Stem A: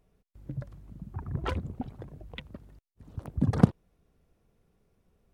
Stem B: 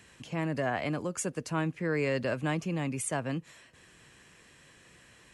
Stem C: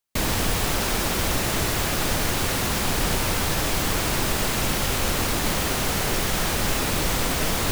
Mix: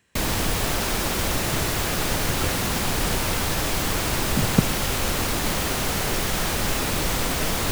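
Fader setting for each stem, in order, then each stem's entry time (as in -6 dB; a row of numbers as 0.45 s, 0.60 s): +0.5 dB, -9.0 dB, -0.5 dB; 0.95 s, 0.00 s, 0.00 s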